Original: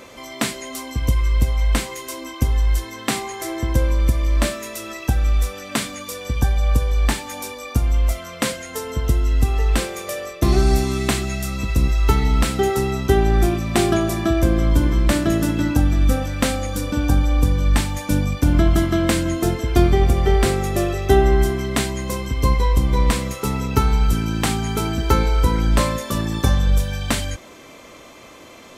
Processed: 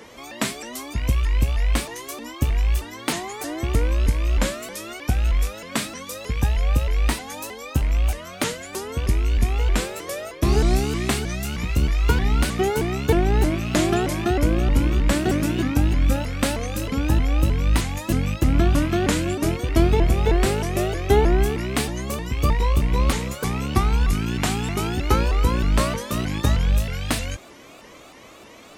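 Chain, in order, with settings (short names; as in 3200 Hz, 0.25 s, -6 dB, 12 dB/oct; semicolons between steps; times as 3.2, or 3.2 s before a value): rattling part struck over -24 dBFS, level -23 dBFS; shaped vibrato saw up 3.2 Hz, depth 250 cents; gain -2.5 dB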